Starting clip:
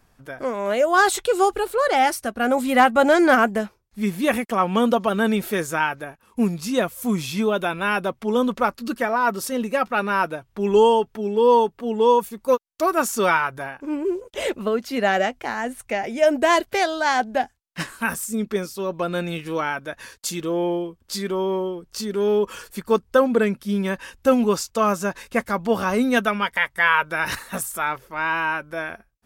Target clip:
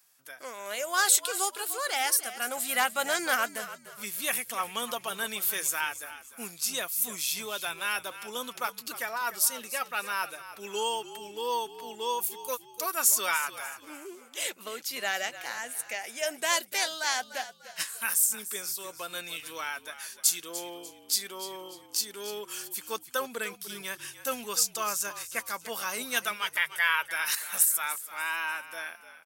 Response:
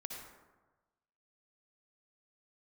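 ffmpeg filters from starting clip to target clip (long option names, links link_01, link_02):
-filter_complex "[0:a]aderivative,asplit=4[link_01][link_02][link_03][link_04];[link_02]adelay=296,afreqshift=-52,volume=-14dB[link_05];[link_03]adelay=592,afreqshift=-104,volume=-23.1dB[link_06];[link_04]adelay=888,afreqshift=-156,volume=-32.2dB[link_07];[link_01][link_05][link_06][link_07]amix=inputs=4:normalize=0,volume=5dB"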